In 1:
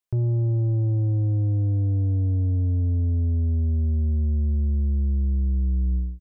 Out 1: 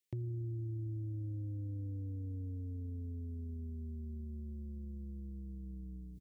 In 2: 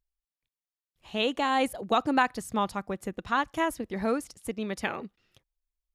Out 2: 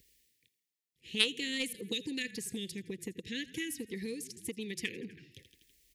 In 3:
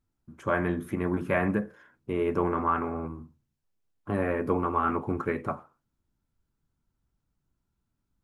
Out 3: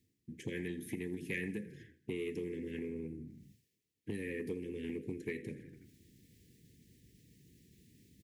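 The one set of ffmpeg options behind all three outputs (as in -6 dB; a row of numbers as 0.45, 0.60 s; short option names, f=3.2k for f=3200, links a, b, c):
-filter_complex "[0:a]asuperstop=centerf=940:order=20:qfactor=0.75,asplit=5[a][b][c][d][e];[b]adelay=82,afreqshift=-32,volume=-19dB[f];[c]adelay=164,afreqshift=-64,volume=-24.4dB[g];[d]adelay=246,afreqshift=-96,volume=-29.7dB[h];[e]adelay=328,afreqshift=-128,volume=-35.1dB[i];[a][f][g][h][i]amix=inputs=5:normalize=0,acrossover=split=2800[j][k];[j]acompressor=threshold=-39dB:ratio=6[l];[l][k]amix=inputs=2:normalize=0,highpass=110,aeval=exprs='0.119*(cos(1*acos(clip(val(0)/0.119,-1,1)))-cos(1*PI/2))+0.0266*(cos(3*acos(clip(val(0)/0.119,-1,1)))-cos(3*PI/2))+0.000841*(cos(5*acos(clip(val(0)/0.119,-1,1)))-cos(5*PI/2))':c=same,areverse,acompressor=mode=upward:threshold=-56dB:ratio=2.5,areverse,volume=10dB"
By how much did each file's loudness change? 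-19.5, -7.0, -13.0 LU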